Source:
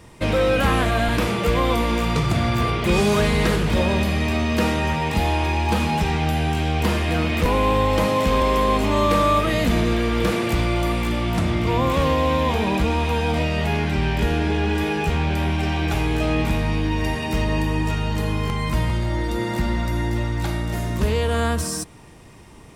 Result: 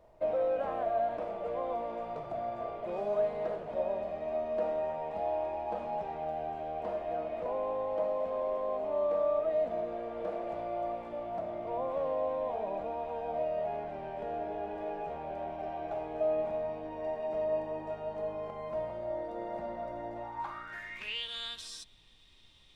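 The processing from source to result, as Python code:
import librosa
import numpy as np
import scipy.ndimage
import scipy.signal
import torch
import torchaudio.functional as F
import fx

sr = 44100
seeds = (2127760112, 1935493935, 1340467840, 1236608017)

y = fx.rider(x, sr, range_db=10, speed_s=2.0)
y = fx.filter_sweep_bandpass(y, sr, from_hz=640.0, to_hz=3600.0, start_s=20.14, end_s=21.29, q=7.6)
y = fx.dmg_noise_colour(y, sr, seeds[0], colour='brown', level_db=-63.0)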